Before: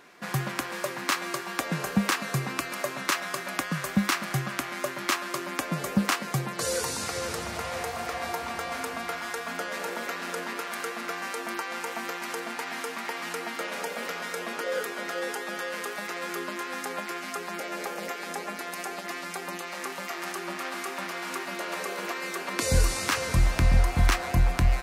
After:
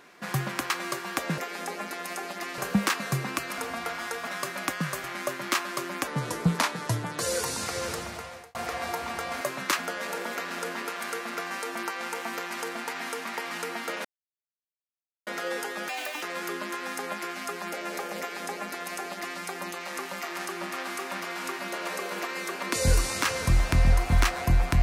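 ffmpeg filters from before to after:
ffmpeg -i in.wav -filter_complex "[0:a]asplit=16[link_01][link_02][link_03][link_04][link_05][link_06][link_07][link_08][link_09][link_10][link_11][link_12][link_13][link_14][link_15][link_16];[link_01]atrim=end=0.702[link_17];[link_02]atrim=start=1.118:end=1.802[link_18];[link_03]atrim=start=18.058:end=19.262[link_19];[link_04]atrim=start=1.798:end=2.802[link_20];[link_05]atrim=start=8.808:end=9.502[link_21];[link_06]atrim=start=3.178:end=3.952[link_22];[link_07]atrim=start=4.608:end=5.644[link_23];[link_08]atrim=start=5.64:end=6.59,asetpts=PTS-STARTPTS,asetrate=37485,aresample=44100,atrim=end_sample=49288,asetpts=PTS-STARTPTS[link_24];[link_09]atrim=start=6.586:end=7.95,asetpts=PTS-STARTPTS,afade=type=out:start_time=0.724:duration=0.64[link_25];[link_10]atrim=start=7.95:end=8.812,asetpts=PTS-STARTPTS,afade=type=in:duration=0.004:curve=hsin[link_26];[link_11]atrim=start=2.798:end=3.182[link_27];[link_12]atrim=start=9.498:end=13.76,asetpts=PTS-STARTPTS,afade=type=out:start_time=4.258:duration=0.004:curve=hsin[link_28];[link_13]atrim=start=13.76:end=14.98,asetpts=PTS-STARTPTS,volume=0[link_29];[link_14]atrim=start=14.98:end=15.604,asetpts=PTS-STARTPTS,afade=type=in:duration=0.004:curve=hsin[link_30];[link_15]atrim=start=15.6:end=16.09,asetpts=PTS-STARTPTS,asetrate=64386,aresample=44100[link_31];[link_16]atrim=start=16.086[link_32];[link_17][link_18]acrossfade=duration=0.004:curve1=hsin:curve2=hsin[link_33];[link_33][link_19]acrossfade=duration=0.004:curve1=hsin:curve2=hsin[link_34];[link_34][link_20]acrossfade=duration=0.004:curve1=hsin:curve2=hsin[link_35];[link_35][link_21]acrossfade=duration=0.004:curve1=hsin:curve2=hsin[link_36];[link_36][link_22]acrossfade=duration=0.004:curve1=hsin:curve2=hsin[link_37];[link_37][link_23]acrossfade=duration=0.004:curve1=hsin:curve2=hsin[link_38];[link_38][link_24]acrossfade=duration=0.004:curve1=hsin:curve2=hsin[link_39];[link_25][link_26]concat=n=2:v=0:a=1[link_40];[link_39][link_40]acrossfade=duration=0.004:curve1=hsin:curve2=hsin[link_41];[link_41][link_27]acrossfade=duration=0.004:curve1=hsin:curve2=hsin[link_42];[link_28][link_29][link_30]concat=n=3:v=0:a=1[link_43];[link_42][link_43]acrossfade=duration=0.004:curve1=hsin:curve2=hsin[link_44];[link_44][link_31]acrossfade=duration=0.004:curve1=hsin:curve2=hsin[link_45];[link_45][link_32]acrossfade=duration=0.004:curve1=hsin:curve2=hsin" out.wav

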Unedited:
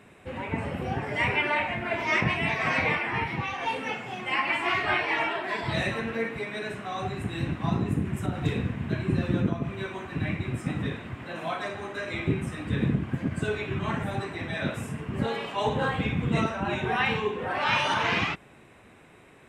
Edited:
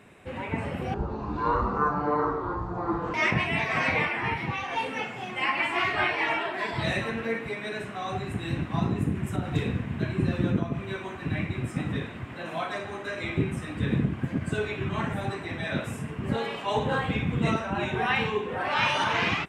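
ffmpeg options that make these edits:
ffmpeg -i in.wav -filter_complex "[0:a]asplit=3[link_01][link_02][link_03];[link_01]atrim=end=0.944[link_04];[link_02]atrim=start=0.94:end=2.04,asetpts=PTS-STARTPTS,asetrate=22050,aresample=44100[link_05];[link_03]atrim=start=2.036[link_06];[link_04][link_05]acrossfade=duration=0.004:curve1=hsin:curve2=hsin[link_07];[link_07][link_06]acrossfade=duration=0.004:curve1=hsin:curve2=hsin" out.wav

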